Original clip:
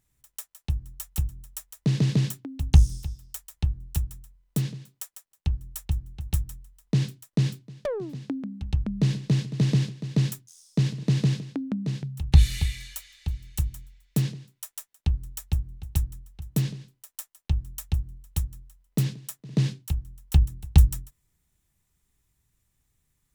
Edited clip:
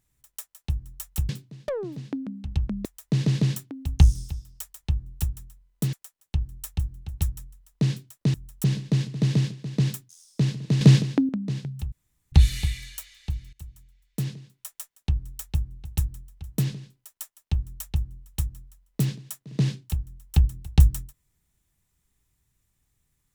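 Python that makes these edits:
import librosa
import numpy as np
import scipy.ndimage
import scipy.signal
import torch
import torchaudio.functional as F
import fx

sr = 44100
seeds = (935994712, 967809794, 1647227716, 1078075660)

y = fx.edit(x, sr, fx.swap(start_s=1.29, length_s=0.3, other_s=7.46, other_length_s=1.56),
    fx.cut(start_s=4.67, length_s=0.38),
    fx.clip_gain(start_s=11.19, length_s=0.48, db=9.5),
    fx.insert_room_tone(at_s=12.3, length_s=0.4),
    fx.fade_in_from(start_s=13.51, length_s=1.22, floor_db=-20.5), tone=tone)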